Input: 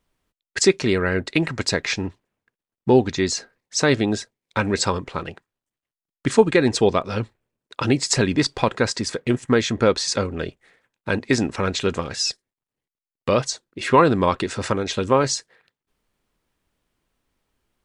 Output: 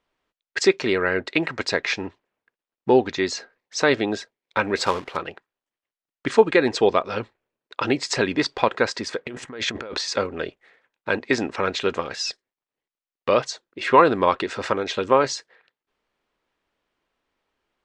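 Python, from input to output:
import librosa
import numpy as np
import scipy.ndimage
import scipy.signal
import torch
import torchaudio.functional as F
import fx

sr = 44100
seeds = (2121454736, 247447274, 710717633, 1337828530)

y = fx.quant_companded(x, sr, bits=4, at=(4.76, 5.17))
y = fx.over_compress(y, sr, threshold_db=-29.0, ratio=-1.0, at=(9.25, 10.01))
y = scipy.signal.sosfilt(scipy.signal.butter(2, 5800.0, 'lowpass', fs=sr, output='sos'), y)
y = fx.bass_treble(y, sr, bass_db=-13, treble_db=-5)
y = y * librosa.db_to_amplitude(1.5)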